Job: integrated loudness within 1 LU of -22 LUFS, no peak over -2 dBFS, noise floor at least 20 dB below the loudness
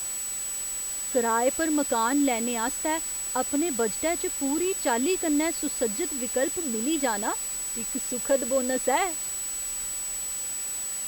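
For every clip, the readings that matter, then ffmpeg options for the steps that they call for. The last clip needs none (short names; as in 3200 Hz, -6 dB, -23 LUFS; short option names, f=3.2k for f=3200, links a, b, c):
steady tone 7900 Hz; tone level -30 dBFS; noise floor -32 dBFS; noise floor target -46 dBFS; loudness -26.0 LUFS; peak -11.5 dBFS; loudness target -22.0 LUFS
-> -af "bandreject=f=7.9k:w=30"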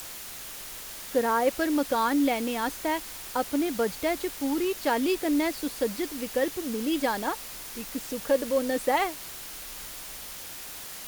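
steady tone none; noise floor -41 dBFS; noise floor target -49 dBFS
-> -af "afftdn=nr=8:nf=-41"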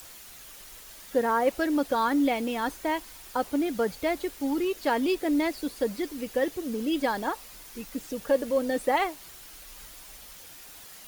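noise floor -47 dBFS; noise floor target -48 dBFS
-> -af "afftdn=nr=6:nf=-47"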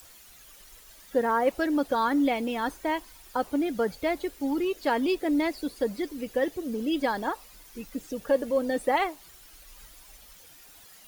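noise floor -52 dBFS; loudness -28.0 LUFS; peak -12.5 dBFS; loudness target -22.0 LUFS
-> -af "volume=6dB"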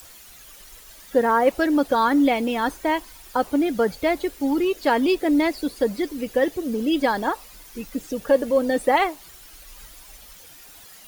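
loudness -22.0 LUFS; peak -6.5 dBFS; noise floor -46 dBFS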